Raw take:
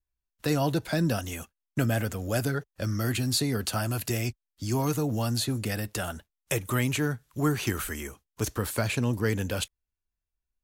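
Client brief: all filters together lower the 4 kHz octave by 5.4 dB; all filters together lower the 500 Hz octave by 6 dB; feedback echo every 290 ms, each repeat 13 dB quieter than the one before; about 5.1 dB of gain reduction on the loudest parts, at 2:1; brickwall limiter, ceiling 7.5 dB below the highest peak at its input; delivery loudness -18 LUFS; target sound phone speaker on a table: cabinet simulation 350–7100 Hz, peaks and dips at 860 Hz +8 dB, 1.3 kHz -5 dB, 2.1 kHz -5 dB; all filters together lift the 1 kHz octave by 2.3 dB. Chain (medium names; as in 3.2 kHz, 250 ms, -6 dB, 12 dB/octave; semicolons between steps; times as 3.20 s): peaking EQ 500 Hz -8.5 dB; peaking EQ 1 kHz +3.5 dB; peaking EQ 4 kHz -6.5 dB; compression 2:1, threshold -32 dBFS; peak limiter -25 dBFS; cabinet simulation 350–7100 Hz, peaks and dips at 860 Hz +8 dB, 1.3 kHz -5 dB, 2.1 kHz -5 dB; feedback delay 290 ms, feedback 22%, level -13 dB; trim +23.5 dB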